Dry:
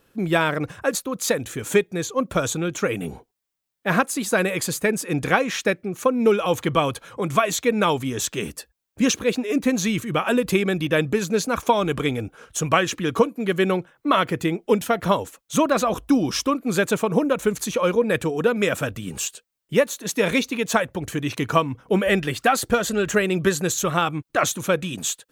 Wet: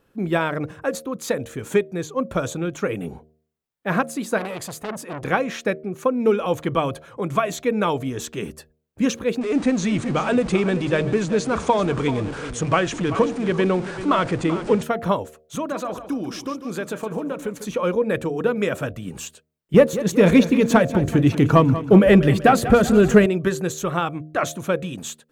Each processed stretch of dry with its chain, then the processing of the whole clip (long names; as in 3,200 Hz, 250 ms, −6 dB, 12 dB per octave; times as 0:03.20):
0:04.38–0:05.25: hard clipping −12.5 dBFS + saturating transformer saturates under 1,700 Hz
0:09.41–0:14.83: converter with a step at zero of −26 dBFS + Butterworth low-pass 9,600 Hz 96 dB per octave + single-tap delay 386 ms −12.5 dB
0:15.55–0:17.68: low-shelf EQ 120 Hz −11 dB + downward compressor 2 to 1, threshold −26 dBFS + repeating echo 148 ms, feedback 34%, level −11 dB
0:19.74–0:23.26: low-shelf EQ 420 Hz +9 dB + leveller curve on the samples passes 1 + repeating echo 190 ms, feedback 53%, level −13.5 dB
whole clip: high-shelf EQ 2,100 Hz −8.5 dB; hum removal 77.08 Hz, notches 9